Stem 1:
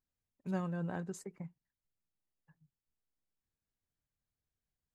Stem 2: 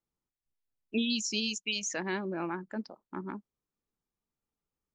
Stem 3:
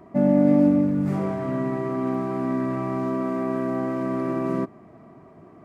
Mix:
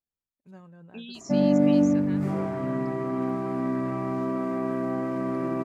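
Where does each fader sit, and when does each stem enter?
-12.0 dB, -11.5 dB, -2.5 dB; 0.00 s, 0.00 s, 1.15 s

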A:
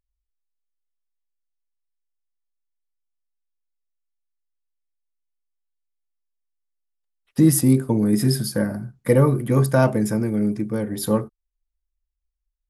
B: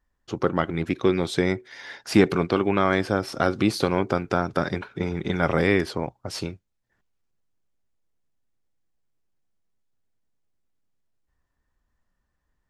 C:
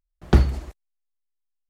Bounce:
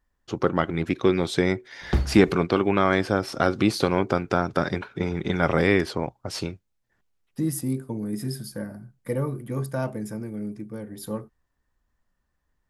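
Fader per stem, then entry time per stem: -11.0 dB, +0.5 dB, -7.0 dB; 0.00 s, 0.00 s, 1.60 s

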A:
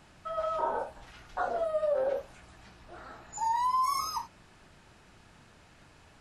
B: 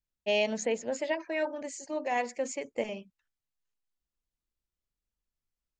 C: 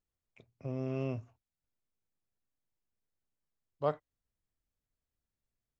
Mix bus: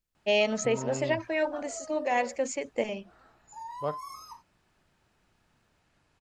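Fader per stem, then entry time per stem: -12.5 dB, +3.0 dB, -1.0 dB; 0.15 s, 0.00 s, 0.00 s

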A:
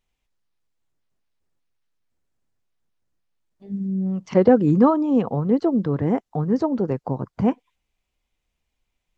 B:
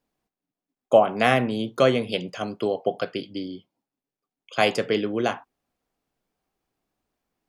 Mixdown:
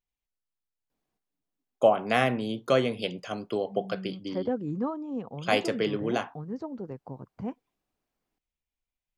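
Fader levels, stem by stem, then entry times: -15.0 dB, -4.5 dB; 0.00 s, 0.90 s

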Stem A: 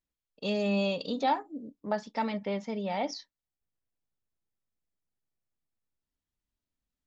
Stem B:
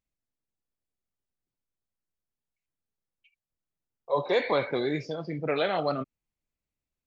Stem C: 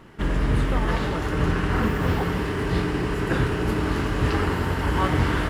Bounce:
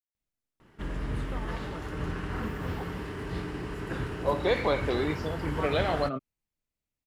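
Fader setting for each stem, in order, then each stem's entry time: mute, -1.0 dB, -11.0 dB; mute, 0.15 s, 0.60 s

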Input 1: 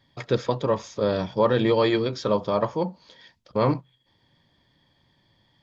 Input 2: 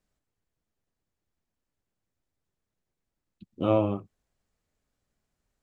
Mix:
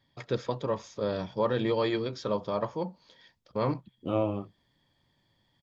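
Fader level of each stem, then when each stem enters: -7.0 dB, -4.5 dB; 0.00 s, 0.45 s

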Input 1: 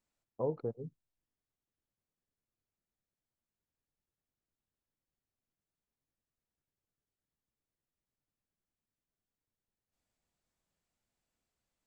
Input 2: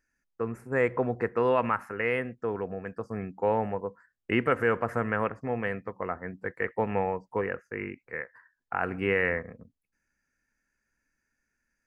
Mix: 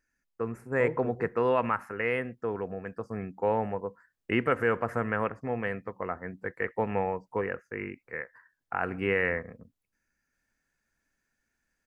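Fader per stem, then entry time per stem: 0.0 dB, -1.0 dB; 0.40 s, 0.00 s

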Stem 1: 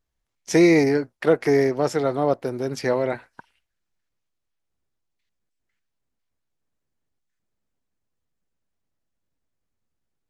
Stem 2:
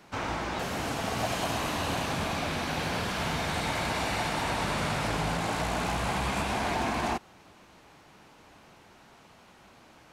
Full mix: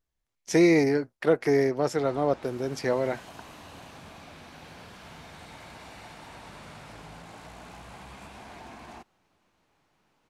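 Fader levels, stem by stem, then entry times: -4.0 dB, -16.0 dB; 0.00 s, 1.85 s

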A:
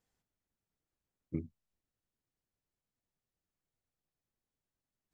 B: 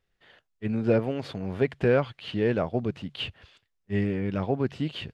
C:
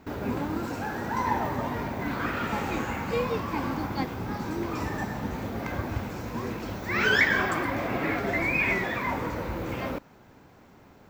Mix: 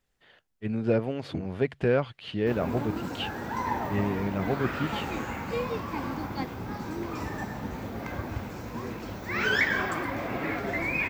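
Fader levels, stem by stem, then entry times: +2.5 dB, -2.0 dB, -3.0 dB; 0.00 s, 0.00 s, 2.40 s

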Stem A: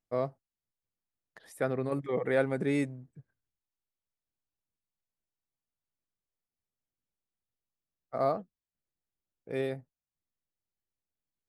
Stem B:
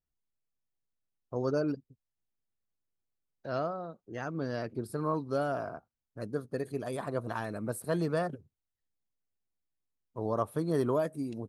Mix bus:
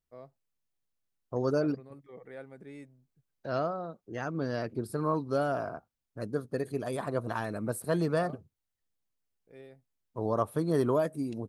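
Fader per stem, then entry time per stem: -18.0 dB, +2.0 dB; 0.00 s, 0.00 s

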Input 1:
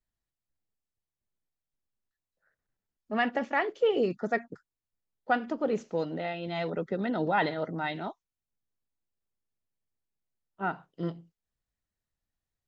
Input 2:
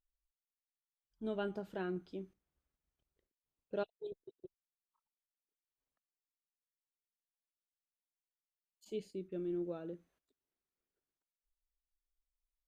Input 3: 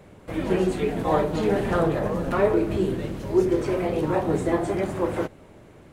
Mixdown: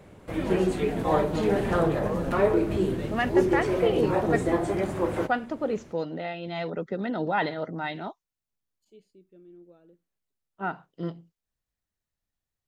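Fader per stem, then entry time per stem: +0.5 dB, -12.5 dB, -1.5 dB; 0.00 s, 0.00 s, 0.00 s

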